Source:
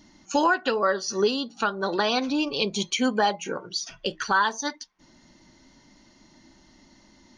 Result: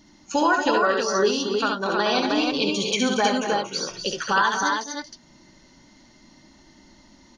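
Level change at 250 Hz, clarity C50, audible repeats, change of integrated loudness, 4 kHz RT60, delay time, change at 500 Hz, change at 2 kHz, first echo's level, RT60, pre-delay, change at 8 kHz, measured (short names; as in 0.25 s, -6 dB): +3.0 dB, none, 3, +3.0 dB, none, 68 ms, +3.0 dB, +3.0 dB, -4.5 dB, none, none, +3.0 dB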